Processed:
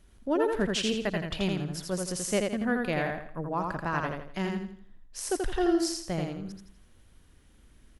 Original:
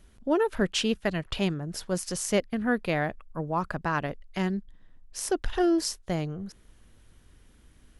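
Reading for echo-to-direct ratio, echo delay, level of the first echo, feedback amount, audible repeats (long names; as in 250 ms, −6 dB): −3.0 dB, 83 ms, −3.5 dB, 36%, 4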